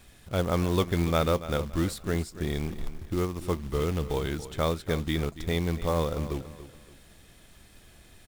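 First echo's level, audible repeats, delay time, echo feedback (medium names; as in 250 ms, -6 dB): -14.0 dB, 3, 284 ms, 32%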